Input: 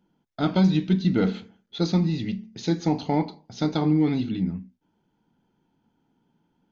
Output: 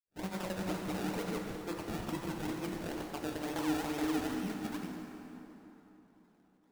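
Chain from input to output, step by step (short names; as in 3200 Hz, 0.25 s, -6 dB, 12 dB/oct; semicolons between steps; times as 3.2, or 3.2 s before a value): HPF 430 Hz 12 dB/oct; reverse; compressor, threshold -29 dBFS, peak gain reduction 7.5 dB; reverse; limiter -28.5 dBFS, peak gain reduction 8 dB; grains, spray 0.396 s; decimation with a swept rate 29×, swing 100% 2.2 Hz; plate-style reverb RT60 3.6 s, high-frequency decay 0.65×, DRR 1.5 dB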